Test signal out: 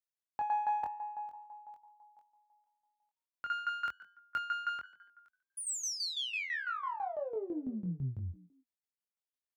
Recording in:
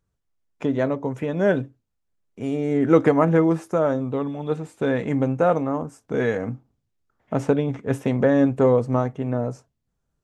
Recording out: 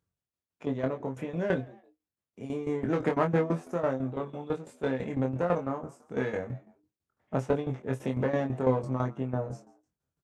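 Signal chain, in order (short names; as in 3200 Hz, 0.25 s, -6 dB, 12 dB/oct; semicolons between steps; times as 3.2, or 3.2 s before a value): one diode to ground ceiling -18.5 dBFS; HPF 57 Hz 24 dB/oct; frequency-shifting echo 0.142 s, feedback 33%, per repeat +90 Hz, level -21 dB; tremolo saw down 6 Hz, depth 80%; doubler 23 ms -4.5 dB; gain -4.5 dB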